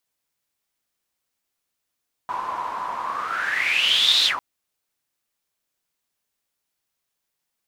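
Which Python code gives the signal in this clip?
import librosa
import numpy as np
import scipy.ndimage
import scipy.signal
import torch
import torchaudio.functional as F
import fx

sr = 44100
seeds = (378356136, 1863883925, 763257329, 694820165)

y = fx.whoosh(sr, seeds[0], length_s=2.1, peak_s=1.96, rise_s=1.34, fall_s=0.13, ends_hz=1000.0, peak_hz=3800.0, q=9.9, swell_db=11)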